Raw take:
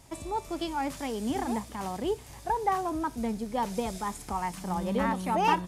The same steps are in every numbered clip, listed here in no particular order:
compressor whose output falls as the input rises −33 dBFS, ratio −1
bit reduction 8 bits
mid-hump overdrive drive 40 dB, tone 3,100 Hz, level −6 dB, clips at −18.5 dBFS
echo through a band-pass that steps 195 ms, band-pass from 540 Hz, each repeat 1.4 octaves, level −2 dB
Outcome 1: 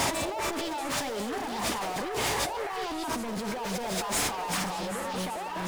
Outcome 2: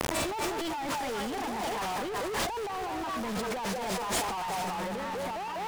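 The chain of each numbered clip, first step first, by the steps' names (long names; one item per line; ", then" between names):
mid-hump overdrive, then bit reduction, then compressor whose output falls as the input rises, then echo through a band-pass that steps
echo through a band-pass that steps, then bit reduction, then mid-hump overdrive, then compressor whose output falls as the input rises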